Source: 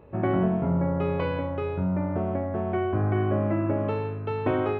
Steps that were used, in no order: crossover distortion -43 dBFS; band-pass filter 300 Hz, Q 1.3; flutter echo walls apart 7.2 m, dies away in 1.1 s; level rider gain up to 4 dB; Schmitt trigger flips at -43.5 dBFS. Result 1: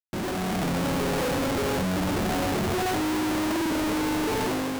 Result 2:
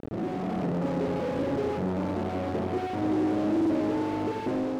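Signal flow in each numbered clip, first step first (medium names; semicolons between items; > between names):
band-pass filter > crossover distortion > flutter echo > Schmitt trigger > level rider; flutter echo > Schmitt trigger > band-pass filter > crossover distortion > level rider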